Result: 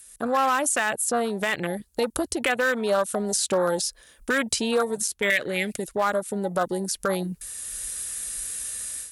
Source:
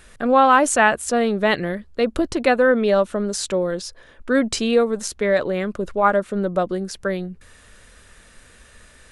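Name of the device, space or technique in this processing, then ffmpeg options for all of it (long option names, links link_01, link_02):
FM broadcast chain: -filter_complex "[0:a]afwtdn=0.0562,asettb=1/sr,asplit=3[link_01][link_02][link_03];[link_01]atrim=end=5.304[link_04];[link_02]atrim=start=5.3:end=5.87,asetpts=PTS-STARTPTS,afade=type=in:duration=0.004:curve=qsin,afade=type=out:start_time=0.566:duration=0.004:curve=qsin,highshelf=frequency=1500:width_type=q:width=3:gain=12[link_05];[link_03]atrim=start=5.866[link_06];[link_04][link_05]acrossfade=duration=0.004:curve1=hsin:curve2=qsin[link_07];[link_07][link_06]acrossfade=duration=0.004:curve1=qsin:curve2=hsin,highpass=47,dynaudnorm=framelen=290:gausssize=3:maxgain=15.5dB,acrossover=split=790|4100[link_08][link_09][link_10];[link_08]acompressor=threshold=-26dB:ratio=4[link_11];[link_09]acompressor=threshold=-20dB:ratio=4[link_12];[link_10]acompressor=threshold=-51dB:ratio=4[link_13];[link_11][link_12][link_13]amix=inputs=3:normalize=0,aemphasis=mode=production:type=75fm,alimiter=limit=-13dB:level=0:latency=1:release=41,asoftclip=type=hard:threshold=-14.5dB,lowpass=frequency=15000:width=0.5412,lowpass=frequency=15000:width=1.3066,aemphasis=mode=production:type=75fm"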